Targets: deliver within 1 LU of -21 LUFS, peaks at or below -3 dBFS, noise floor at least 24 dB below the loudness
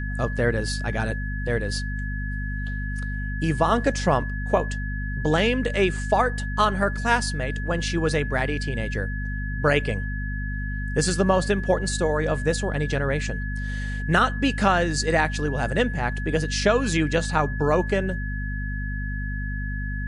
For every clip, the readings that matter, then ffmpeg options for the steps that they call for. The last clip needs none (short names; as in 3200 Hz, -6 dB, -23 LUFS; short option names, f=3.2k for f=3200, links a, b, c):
hum 50 Hz; harmonics up to 250 Hz; hum level -26 dBFS; steady tone 1700 Hz; tone level -34 dBFS; loudness -24.5 LUFS; peak -6.0 dBFS; loudness target -21.0 LUFS
-> -af "bandreject=f=50:t=h:w=6,bandreject=f=100:t=h:w=6,bandreject=f=150:t=h:w=6,bandreject=f=200:t=h:w=6,bandreject=f=250:t=h:w=6"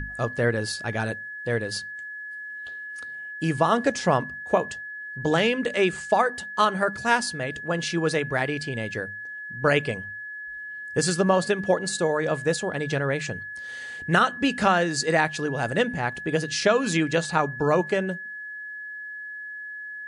hum none; steady tone 1700 Hz; tone level -34 dBFS
-> -af "bandreject=f=1.7k:w=30"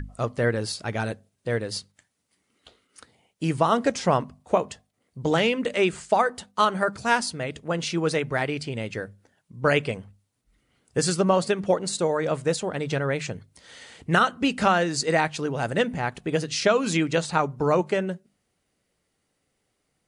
steady tone none; loudness -25.0 LUFS; peak -6.0 dBFS; loudness target -21.0 LUFS
-> -af "volume=4dB,alimiter=limit=-3dB:level=0:latency=1"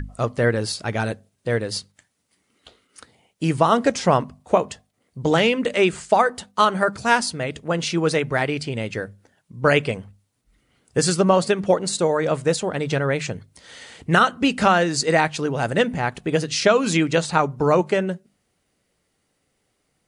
loudness -21.0 LUFS; peak -3.0 dBFS; noise floor -72 dBFS